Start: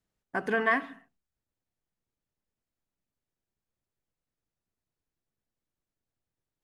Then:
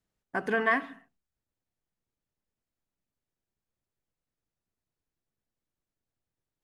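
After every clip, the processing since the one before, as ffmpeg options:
-af anull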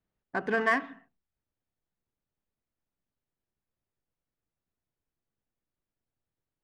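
-af "adynamicsmooth=sensitivity=4.5:basefreq=3600"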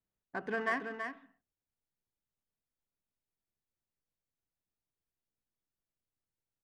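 -af "aecho=1:1:329:0.447,volume=0.422"

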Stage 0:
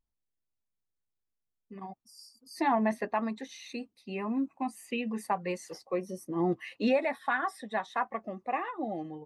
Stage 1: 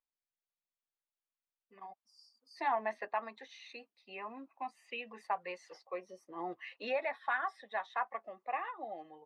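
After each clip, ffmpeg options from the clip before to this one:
-filter_complex "[0:a]acrossover=split=500 4800:gain=0.0794 1 0.0631[s0][s1][s2];[s0][s1][s2]amix=inputs=3:normalize=0,volume=0.668"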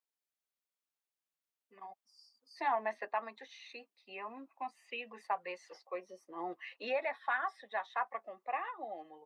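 -af "highpass=200"

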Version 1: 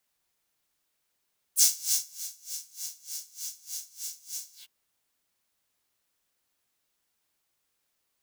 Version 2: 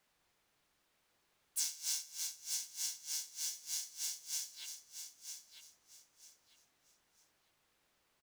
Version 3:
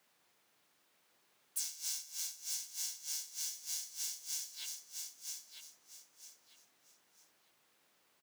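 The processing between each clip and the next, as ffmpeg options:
-af "acompressor=threshold=0.0251:ratio=8,lowpass=f=2700:p=1,aecho=1:1:949|1898|2847:0.398|0.0995|0.0249,volume=2.24"
-af "highpass=160,acompressor=threshold=0.00708:ratio=2.5,highshelf=f=12000:g=4.5,volume=1.5"

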